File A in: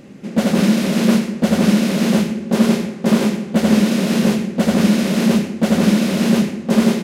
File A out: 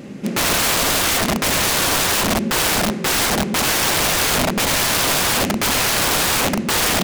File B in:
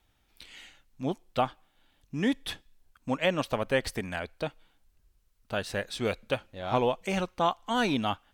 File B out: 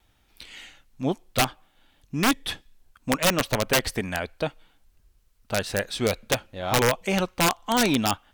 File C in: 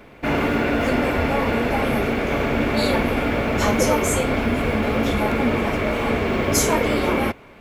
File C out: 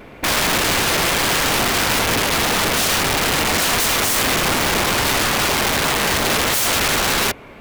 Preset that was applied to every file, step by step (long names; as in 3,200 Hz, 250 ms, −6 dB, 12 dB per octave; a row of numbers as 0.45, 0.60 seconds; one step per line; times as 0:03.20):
wrap-around overflow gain 18.5 dB
pitch vibrato 1 Hz 13 cents
level +5.5 dB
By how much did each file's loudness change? 0.0, +5.5, +4.5 LU